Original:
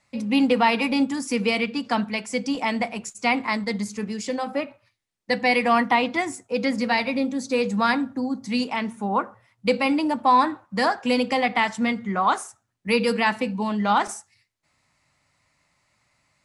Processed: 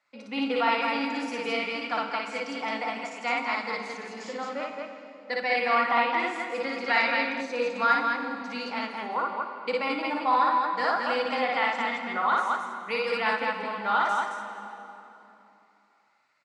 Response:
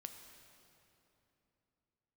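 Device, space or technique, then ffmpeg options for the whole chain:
station announcement: -filter_complex "[0:a]highpass=390,lowpass=4.8k,equalizer=f=1.4k:t=o:w=0.34:g=8.5,aecho=1:1:58.31|218.7:0.891|0.708[a];[1:a]atrim=start_sample=2205[b];[a][b]afir=irnorm=-1:irlink=0,asettb=1/sr,asplit=3[c][d][e];[c]atrim=end=6.884[f];[d]atrim=start=6.88:end=7.41,asetpts=PTS-STARTPTS,afade=t=in:d=0.004:c=qsin,afade=t=out:st=0.526:d=0.004:c=qsin,equalizer=f=2.1k:t=o:w=2.4:g=6[g];[e]atrim=start=7.406[h];[f][g]acrossfade=d=0.004:c1=hsin:c2=qsin[i];[i][h]acrossfade=d=0.004:c1=qsin:c2=hsin,volume=-2.5dB"

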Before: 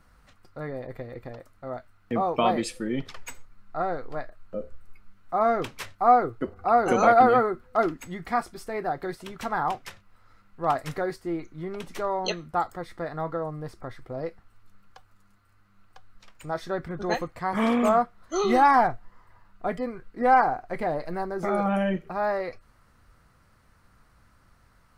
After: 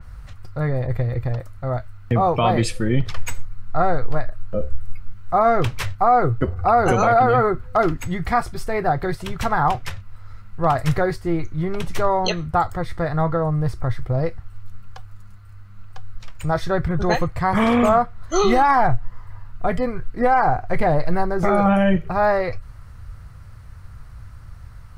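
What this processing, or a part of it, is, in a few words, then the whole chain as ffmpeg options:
car stereo with a boomy subwoofer: -af "lowshelf=f=160:t=q:w=1.5:g=12.5,alimiter=limit=-16.5dB:level=0:latency=1:release=106,adynamicequalizer=threshold=0.00398:dfrequency=4500:dqfactor=0.7:tfrequency=4500:tqfactor=0.7:attack=5:release=100:ratio=0.375:range=2:mode=cutabove:tftype=highshelf,volume=9dB"

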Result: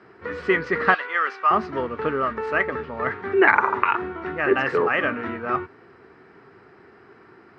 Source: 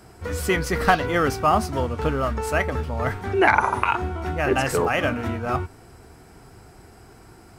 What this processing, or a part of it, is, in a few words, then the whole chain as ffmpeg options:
kitchen radio: -filter_complex "[0:a]highpass=190,equalizer=f=400:t=q:w=4:g=6,equalizer=f=720:t=q:w=4:g=-5,equalizer=f=1.2k:t=q:w=4:g=6,equalizer=f=1.8k:t=q:w=4:g=8,equalizer=f=3.4k:t=q:w=4:g=-4,lowpass=f=3.7k:w=0.5412,lowpass=f=3.7k:w=1.3066,asettb=1/sr,asplit=3[a][b][c];[a]atrim=end=0.944[d];[b]atrim=start=0.94:end=1.51,asetpts=PTS-STARTPTS,afade=t=in:d=0.004:c=qsin,afade=t=out:st=0.566:d=0.004:c=qsin,highpass=950[e];[c]atrim=start=1.506[f];[d][e]acrossfade=d=0.004:c1=hsin:c2=qsin[g];[g][f]acrossfade=d=0.004:c1=qsin:c2=hsin,volume=-2dB"

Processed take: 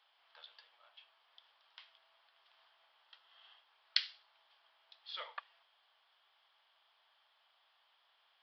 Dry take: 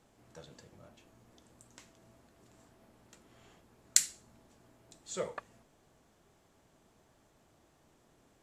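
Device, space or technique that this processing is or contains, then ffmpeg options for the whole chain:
musical greeting card: -filter_complex "[0:a]aresample=11025,aresample=44100,highpass=f=880:w=0.5412,highpass=f=880:w=1.3066,equalizer=f=3.2k:t=o:w=0.36:g=11,asettb=1/sr,asplit=3[a][b][c];[a]atrim=end=3.044[d];[b]atrim=start=3.04:end=3.59,asetpts=PTS-STARTPTS,afade=t=in:d=0.004:c=qsin,afade=t=out:st=0.546:d=0.004:c=qsin,bandreject=f=2.3k:w=8.4[e];[c]atrim=start=3.586[f];[d][e]acrossfade=d=0.004:c1=hsin:c2=qsin[g];[g][f]acrossfade=d=0.004:c1=qsin:c2=hsin,volume=-1dB"

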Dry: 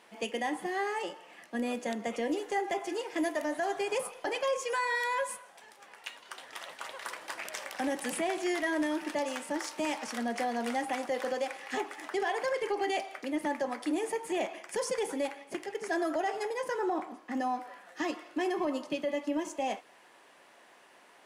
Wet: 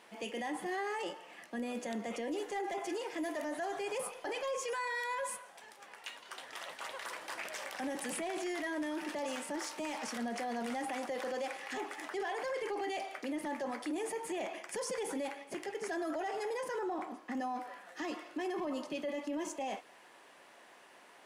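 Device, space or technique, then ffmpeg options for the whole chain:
clipper into limiter: -af "asoftclip=type=hard:threshold=-23.5dB,alimiter=level_in=6.5dB:limit=-24dB:level=0:latency=1:release=11,volume=-6.5dB"

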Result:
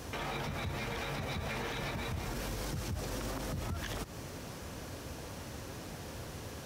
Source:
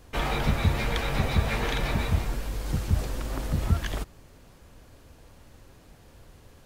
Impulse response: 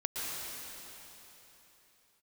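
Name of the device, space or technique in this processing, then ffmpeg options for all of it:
broadcast voice chain: -af "highpass=84,deesser=0.75,acompressor=threshold=-38dB:ratio=5,equalizer=f=5.7k:t=o:w=0.27:g=5,alimiter=level_in=15.5dB:limit=-24dB:level=0:latency=1:release=70,volume=-15.5dB,volume=10.5dB"

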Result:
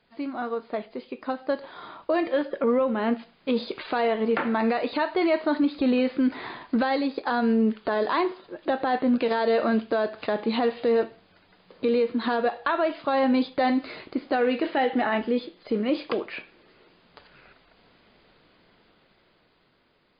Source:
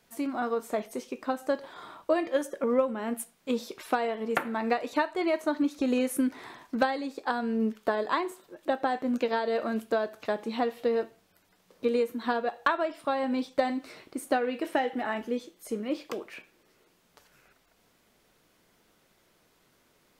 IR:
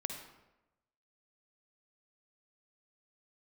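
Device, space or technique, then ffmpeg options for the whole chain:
low-bitrate web radio: -af "dynaudnorm=f=480:g=9:m=9.5dB,alimiter=limit=-15dB:level=0:latency=1:release=21" -ar 11025 -c:a libmp3lame -b:a 32k

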